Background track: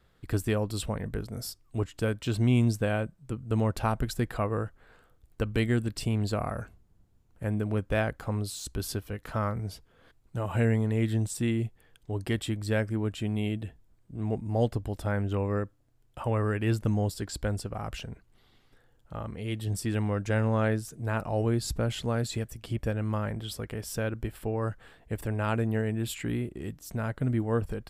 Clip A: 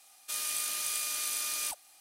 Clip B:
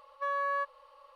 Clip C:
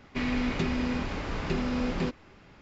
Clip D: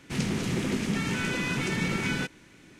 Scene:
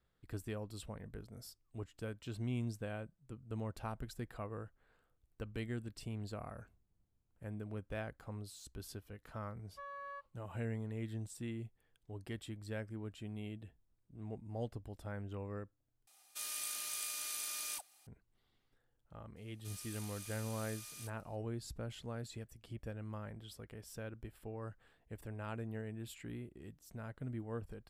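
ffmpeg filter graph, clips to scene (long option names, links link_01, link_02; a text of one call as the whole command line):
ffmpeg -i bed.wav -i cue0.wav -i cue1.wav -filter_complex "[1:a]asplit=2[link_01][link_02];[0:a]volume=-15dB[link_03];[2:a]agate=range=-33dB:threshold=-47dB:ratio=3:release=100:detection=peak[link_04];[link_02]aresample=32000,aresample=44100[link_05];[link_03]asplit=2[link_06][link_07];[link_06]atrim=end=16.074[link_08];[link_01]atrim=end=2,asetpts=PTS-STARTPTS,volume=-8dB[link_09];[link_07]atrim=start=18.066[link_10];[link_04]atrim=end=1.15,asetpts=PTS-STARTPTS,volume=-16dB,afade=type=in:duration=0.004:curve=hsin,afade=type=out:start_time=1.146:duration=0.004:curve=hsin,adelay=9560[link_11];[link_05]atrim=end=2,asetpts=PTS-STARTPTS,volume=-17.5dB,afade=type=in:duration=0.004:curve=hsin,afade=type=out:start_time=1.996:duration=0.004:curve=hsin,adelay=19360[link_12];[link_08][link_09]acrossfade=duration=0.004:curve1=hsin:curve2=hsin[link_13];[link_13][link_10]acrossfade=duration=0.004:curve1=hsin:curve2=hsin[link_14];[link_14][link_11][link_12]amix=inputs=3:normalize=0" out.wav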